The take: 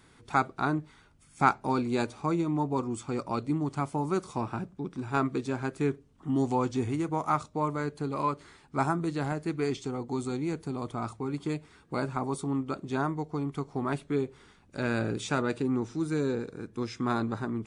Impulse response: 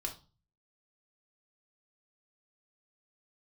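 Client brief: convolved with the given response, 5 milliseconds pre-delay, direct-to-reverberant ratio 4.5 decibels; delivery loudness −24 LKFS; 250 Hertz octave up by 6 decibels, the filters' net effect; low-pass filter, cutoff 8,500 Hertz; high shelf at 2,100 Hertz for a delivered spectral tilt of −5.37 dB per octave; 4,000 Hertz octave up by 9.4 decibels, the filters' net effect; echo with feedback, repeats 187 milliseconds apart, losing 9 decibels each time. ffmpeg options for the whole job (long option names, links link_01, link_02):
-filter_complex "[0:a]lowpass=8500,equalizer=frequency=250:width_type=o:gain=7,highshelf=frequency=2100:gain=5.5,equalizer=frequency=4000:width_type=o:gain=6,aecho=1:1:187|374|561|748:0.355|0.124|0.0435|0.0152,asplit=2[link_01][link_02];[1:a]atrim=start_sample=2205,adelay=5[link_03];[link_02][link_03]afir=irnorm=-1:irlink=0,volume=-5dB[link_04];[link_01][link_04]amix=inputs=2:normalize=0,volume=1.5dB"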